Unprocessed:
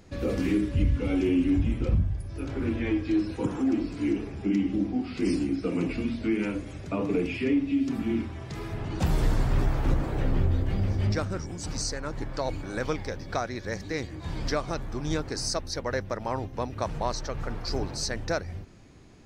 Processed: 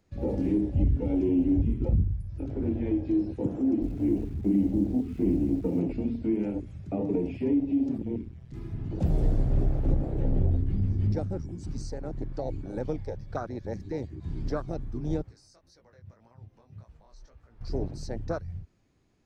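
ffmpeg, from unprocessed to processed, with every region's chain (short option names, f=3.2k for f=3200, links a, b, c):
-filter_complex "[0:a]asettb=1/sr,asplit=3[a][b][c];[a]atrim=end=3.824[d];[b]atrim=start=3.82:end=5.8,asetpts=PTS-STARTPTS,afade=t=in:d=0.004:c=qsin,afade=t=out:st=1.976:d=0.004:c=qsin,lowpass=f=3.2k:w=0.5412,lowpass=f=3.2k:w=1.3066,acrusher=bits=8:dc=4:mix=0:aa=0.000001,lowshelf=f=120:g=8.5[e];[c]atrim=start=5.796[f];[d][e]acrossfade=d=0.004:c1=hsin:c2=qsin[g];[g][f]acrossfade=d=0.004:c1=qsin:c2=hsin,asettb=1/sr,asplit=3[h][i][j];[h]atrim=end=7.984[k];[i]atrim=start=7.98:end=8.54,asetpts=PTS-STARTPTS,afade=t=in:d=0.004:c=qsin,afade=t=out:st=0.556:d=0.004:c=qsin,equalizer=f=1k:w=1.3:g=-6.5,tremolo=f=120:d=0.919[l];[j]atrim=start=8.536[m];[k][l]acrossfade=d=0.004:c1=hsin:c2=qsin[n];[n][m]acrossfade=d=0.004:c1=qsin:c2=hsin,asettb=1/sr,asplit=3[o][p][q];[o]atrim=end=15.224[r];[p]atrim=start=15.22:end=17.61,asetpts=PTS-STARTPTS,afade=t=in:d=0.004:c=qsin,afade=t=out:st=2.386:d=0.004:c=qsin,acompressor=threshold=-35dB:ratio=16:attack=3.2:release=140:knee=1:detection=peak,flanger=delay=16.5:depth=5.6:speed=1.8[s];[q]atrim=start=17.606[t];[r][s]acrossfade=d=0.004:c1=hsin:c2=qsin[u];[u][t]acrossfade=d=0.004:c1=qsin:c2=hsin,afwtdn=0.0447,acrossover=split=370|3000[v][w][x];[w]acompressor=threshold=-31dB:ratio=6[y];[v][y][x]amix=inputs=3:normalize=0"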